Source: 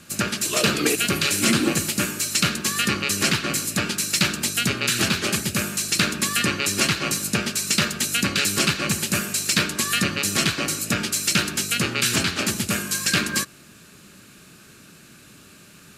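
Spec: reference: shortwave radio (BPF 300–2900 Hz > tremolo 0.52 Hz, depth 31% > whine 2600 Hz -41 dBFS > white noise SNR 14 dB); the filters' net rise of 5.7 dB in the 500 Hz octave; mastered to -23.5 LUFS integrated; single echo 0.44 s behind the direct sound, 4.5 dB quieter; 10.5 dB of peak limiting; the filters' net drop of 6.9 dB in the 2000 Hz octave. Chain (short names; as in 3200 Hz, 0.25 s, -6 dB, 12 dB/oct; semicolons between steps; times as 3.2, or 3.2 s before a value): bell 500 Hz +9 dB; bell 2000 Hz -8.5 dB; limiter -14 dBFS; BPF 300–2900 Hz; echo 0.44 s -4.5 dB; tremolo 0.52 Hz, depth 31%; whine 2600 Hz -41 dBFS; white noise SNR 14 dB; gain +6.5 dB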